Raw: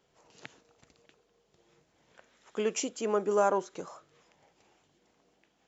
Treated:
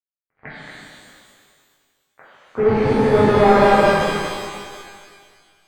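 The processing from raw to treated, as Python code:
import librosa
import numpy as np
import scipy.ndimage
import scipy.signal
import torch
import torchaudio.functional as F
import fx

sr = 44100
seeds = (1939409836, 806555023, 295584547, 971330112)

y = fx.octave_divider(x, sr, octaves=1, level_db=-2.0)
y = fx.low_shelf(y, sr, hz=77.0, db=6.0)
y = y + 10.0 ** (-5.5 / 20.0) * np.pad(y, (int(222 * sr / 1000.0), 0))[:len(y)]
y = fx.leveller(y, sr, passes=2)
y = np.sign(y) * np.maximum(np.abs(y) - 10.0 ** (-55.0 / 20.0), 0.0)
y = fx.leveller(y, sr, passes=2)
y = scipy.signal.sosfilt(scipy.signal.butter(8, 2200.0, 'lowpass', fs=sr, output='sos'), y)
y = fx.rev_shimmer(y, sr, seeds[0], rt60_s=1.9, semitones=12, shimmer_db=-8, drr_db=-10.0)
y = F.gain(torch.from_numpy(y), -6.0).numpy()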